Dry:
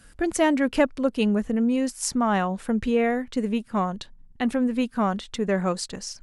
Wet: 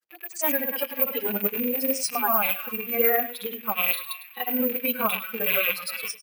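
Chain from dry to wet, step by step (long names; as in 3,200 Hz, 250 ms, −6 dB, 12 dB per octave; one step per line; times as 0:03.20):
loose part that buzzes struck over −41 dBFS, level −13 dBFS
high-pass filter 500 Hz 12 dB per octave
feedback echo with a band-pass in the loop 181 ms, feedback 77%, band-pass 2,500 Hz, level −12 dB
brickwall limiter −17 dBFS, peak gain reduction 8.5 dB
low-pass filter 7,200 Hz 12 dB per octave
bad sample-rate conversion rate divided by 3×, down none, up zero stuff
granular cloud, pitch spread up and down by 0 semitones
noise reduction from a noise print of the clip's start 13 dB
on a send: single-tap delay 103 ms −13.5 dB
on the sum: automatic gain control gain up to 12.5 dB
barber-pole flanger 5.7 ms −3 Hz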